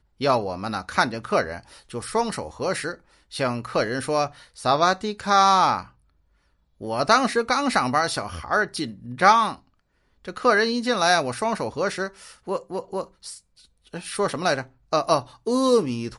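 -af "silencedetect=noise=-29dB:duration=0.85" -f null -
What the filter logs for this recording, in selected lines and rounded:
silence_start: 5.81
silence_end: 6.83 | silence_duration: 1.01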